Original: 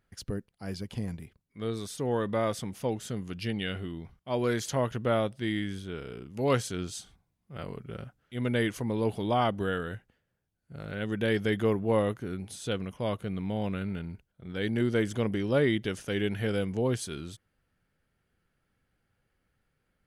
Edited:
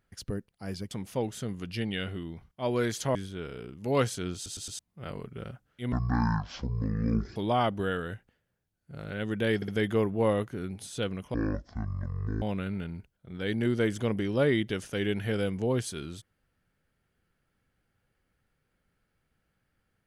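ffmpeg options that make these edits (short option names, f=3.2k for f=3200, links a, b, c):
-filter_complex "[0:a]asplit=13[a][b][c][d][e][f][g][h][i][j][k][l][m];[a]atrim=end=0.912[n];[b]atrim=start=2.588:end=4.832[o];[c]atrim=start=5.678:end=6.992[p];[d]atrim=start=6.878:end=6.992[q];[e]atrim=start=6.878:end=6.992[r];[f]atrim=start=6.878:end=6.992[s];[g]atrim=start=7.318:end=8.454[t];[h]atrim=start=8.45:end=9.17,asetpts=PTS-STARTPTS,asetrate=22050,aresample=44100[u];[i]atrim=start=9.166:end=11.432[v];[j]atrim=start=11.368:end=11.432[w];[k]atrim=start=11.368:end=13.034[x];[l]atrim=start=13.03:end=13.57,asetpts=PTS-STARTPTS,asetrate=22050,aresample=44100[y];[m]atrim=start=13.566[z];[n][o]acrossfade=d=0.004:c1=hsin:c2=hsin[aa];[aa][p]acrossfade=d=0.004:c1=hsin:c2=hsin[ab];[ab][q]acrossfade=d=0.004:c1=hsin:c2=hsin[ac];[ac][r]acrossfade=d=0.004:c1=hsin:c2=hsin[ad];[ad][s]acrossfade=d=0.004:c1=hsin:c2=hsin[ae];[ae][t]acrossfade=d=0.004:c1=hsin:c2=hsin[af];[af][u]acrossfade=d=0.004:c1=hsin:c2=hsin[ag];[ag][v]acrossfade=d=0.004:c1=hsin:c2=hsin[ah];[ah][w]acrossfade=d=0.004:c1=hsin:c2=hsin[ai];[ai][x]acrossfade=d=0.004:c1=hsin:c2=hsin[aj];[aj][y]acrossfade=d=0.004:c1=hsin:c2=hsin[ak];[ak][z]acrossfade=d=0.004:c1=hsin:c2=hsin"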